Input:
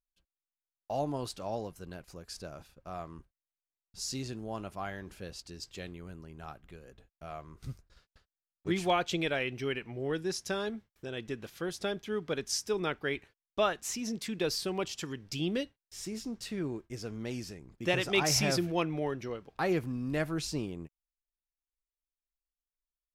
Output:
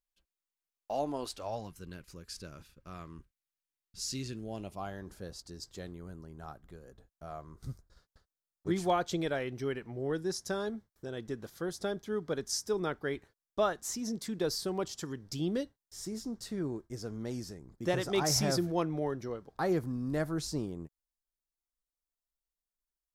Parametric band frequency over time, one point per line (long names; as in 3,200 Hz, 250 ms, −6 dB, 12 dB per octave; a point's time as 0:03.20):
parametric band −13.5 dB 0.72 octaves
0:01.29 120 Hz
0:01.78 710 Hz
0:04.28 710 Hz
0:05.03 2,600 Hz